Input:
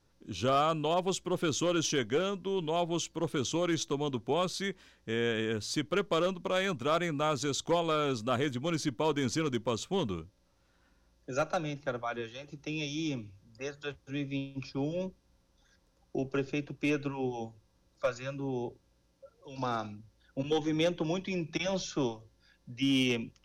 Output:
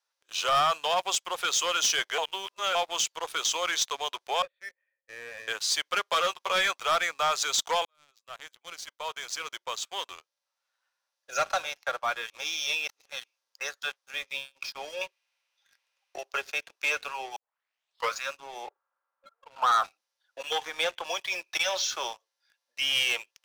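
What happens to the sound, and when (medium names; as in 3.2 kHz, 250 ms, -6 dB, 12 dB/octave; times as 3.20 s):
2.18–2.75 s: reverse
4.42–5.48 s: cascade formant filter e
6.04–6.71 s: doubling 13 ms -7 dB
7.85–11.44 s: fade in
12.30–13.24 s: reverse
15.01–16.17 s: peaking EQ 2.5 kHz +14.5 dB 0.84 oct
17.36 s: tape start 0.80 s
18.67–19.84 s: resonant low-pass 1.3 kHz, resonance Q 3.8
20.55–21.10 s: tone controls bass -4 dB, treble -8 dB
whole clip: Bessel high-pass 1 kHz, order 6; waveshaping leveller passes 3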